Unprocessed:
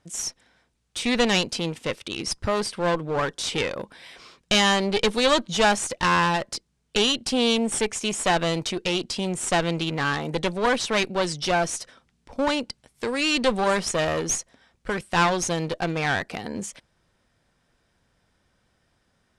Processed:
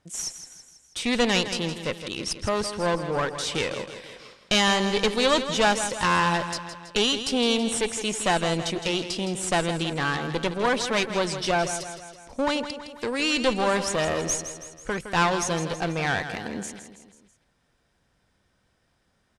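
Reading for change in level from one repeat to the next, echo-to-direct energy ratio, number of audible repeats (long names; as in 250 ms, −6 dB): −5.5 dB, −9.0 dB, 4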